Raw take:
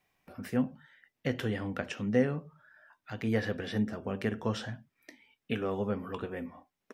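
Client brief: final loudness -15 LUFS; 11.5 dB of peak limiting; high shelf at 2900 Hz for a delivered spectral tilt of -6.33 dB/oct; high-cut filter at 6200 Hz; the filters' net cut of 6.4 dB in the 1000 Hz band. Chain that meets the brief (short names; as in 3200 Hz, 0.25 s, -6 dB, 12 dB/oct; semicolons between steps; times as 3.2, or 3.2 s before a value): LPF 6200 Hz; bell 1000 Hz -8.5 dB; high shelf 2900 Hz -3.5 dB; gain +23.5 dB; limiter -3 dBFS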